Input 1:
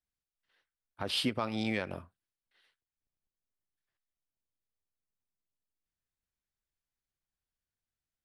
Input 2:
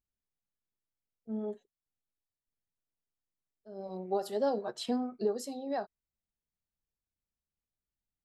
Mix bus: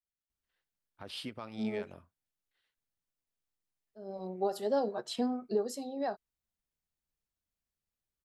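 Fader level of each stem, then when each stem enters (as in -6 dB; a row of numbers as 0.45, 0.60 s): -10.5, 0.0 dB; 0.00, 0.30 s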